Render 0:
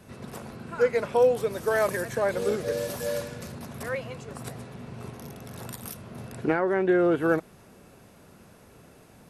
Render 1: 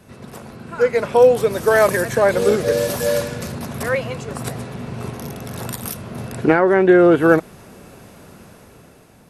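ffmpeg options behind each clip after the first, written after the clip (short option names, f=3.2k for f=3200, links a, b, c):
-af "dynaudnorm=f=220:g=9:m=8dB,volume=3dB"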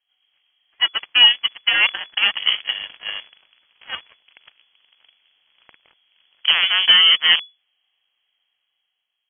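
-af "aeval=exprs='0.891*(cos(1*acos(clip(val(0)/0.891,-1,1)))-cos(1*PI/2))+0.0112*(cos(5*acos(clip(val(0)/0.891,-1,1)))-cos(5*PI/2))+0.141*(cos(7*acos(clip(val(0)/0.891,-1,1)))-cos(7*PI/2))+0.00631*(cos(8*acos(clip(val(0)/0.891,-1,1)))-cos(8*PI/2))':c=same,lowpass=f=2.9k:t=q:w=0.5098,lowpass=f=2.9k:t=q:w=0.6013,lowpass=f=2.9k:t=q:w=0.9,lowpass=f=2.9k:t=q:w=2.563,afreqshift=-3400,volume=-2dB"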